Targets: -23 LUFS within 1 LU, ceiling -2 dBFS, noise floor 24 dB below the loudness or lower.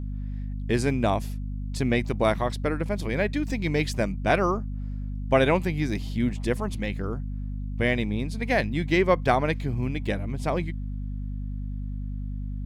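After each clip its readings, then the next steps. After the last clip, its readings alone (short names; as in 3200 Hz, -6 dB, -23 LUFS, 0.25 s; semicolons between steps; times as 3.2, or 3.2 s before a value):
hum 50 Hz; harmonics up to 250 Hz; hum level -29 dBFS; loudness -27.0 LUFS; peak -7.0 dBFS; loudness target -23.0 LUFS
-> de-hum 50 Hz, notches 5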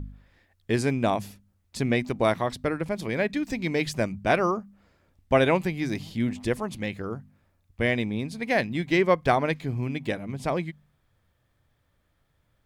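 hum none; loudness -26.5 LUFS; peak -7.5 dBFS; loudness target -23.0 LUFS
-> gain +3.5 dB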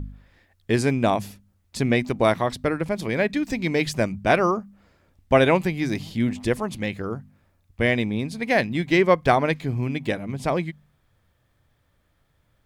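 loudness -23.0 LUFS; peak -4.0 dBFS; noise floor -67 dBFS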